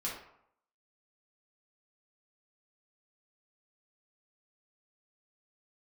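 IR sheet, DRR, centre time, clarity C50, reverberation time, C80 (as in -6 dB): -6.0 dB, 40 ms, 3.5 dB, 0.70 s, 7.5 dB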